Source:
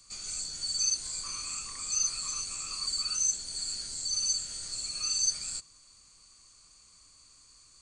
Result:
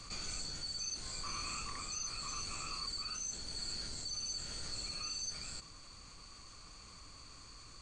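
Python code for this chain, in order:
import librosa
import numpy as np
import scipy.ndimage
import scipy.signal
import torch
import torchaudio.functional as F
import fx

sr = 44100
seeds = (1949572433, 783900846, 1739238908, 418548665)

y = fx.rider(x, sr, range_db=10, speed_s=0.5)
y = fx.spacing_loss(y, sr, db_at_10k=21)
y = fx.env_flatten(y, sr, amount_pct=50)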